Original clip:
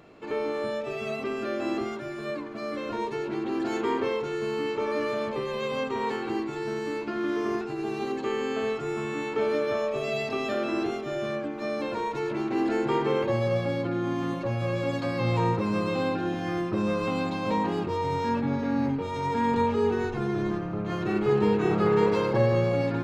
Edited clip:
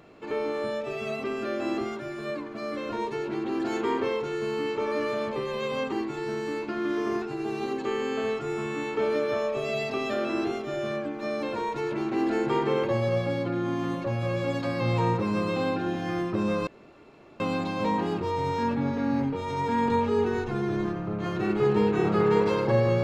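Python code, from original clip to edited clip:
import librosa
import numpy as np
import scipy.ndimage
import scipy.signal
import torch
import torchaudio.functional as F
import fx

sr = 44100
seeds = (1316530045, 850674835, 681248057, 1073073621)

y = fx.edit(x, sr, fx.cut(start_s=5.92, length_s=0.39),
    fx.insert_room_tone(at_s=17.06, length_s=0.73), tone=tone)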